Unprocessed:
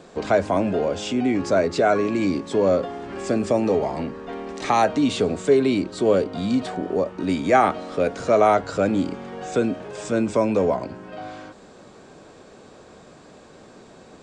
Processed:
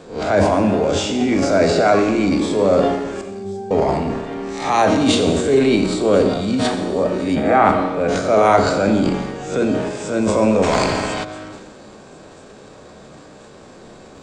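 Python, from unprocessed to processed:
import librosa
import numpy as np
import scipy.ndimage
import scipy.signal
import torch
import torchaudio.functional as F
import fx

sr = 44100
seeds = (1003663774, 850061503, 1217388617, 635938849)

y = fx.spec_swells(x, sr, rise_s=0.4)
y = fx.low_shelf(y, sr, hz=200.0, db=3.5)
y = fx.hum_notches(y, sr, base_hz=60, count=7)
y = fx.transient(y, sr, attack_db=-5, sustain_db=9)
y = fx.octave_resonator(y, sr, note='G', decay_s=0.68, at=(3.21, 3.71))
y = fx.air_absorb(y, sr, metres=290.0, at=(7.35, 8.08))
y = fx.echo_wet_highpass(y, sr, ms=1045, feedback_pct=54, hz=4600.0, wet_db=-17.5)
y = fx.rev_schroeder(y, sr, rt60_s=1.2, comb_ms=29, drr_db=5.5)
y = fx.spectral_comp(y, sr, ratio=2.0, at=(10.62, 11.23), fade=0.02)
y = F.gain(torch.from_numpy(y), 2.0).numpy()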